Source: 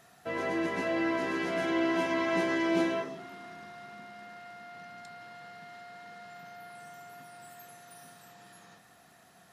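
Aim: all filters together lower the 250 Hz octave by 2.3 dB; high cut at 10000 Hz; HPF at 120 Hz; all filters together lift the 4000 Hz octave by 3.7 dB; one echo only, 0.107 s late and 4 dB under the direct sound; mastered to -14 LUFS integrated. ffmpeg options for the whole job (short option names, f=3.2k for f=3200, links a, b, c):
-af "highpass=120,lowpass=10k,equalizer=f=250:t=o:g=-3.5,equalizer=f=4k:t=o:g=5,aecho=1:1:107:0.631,volume=15.5dB"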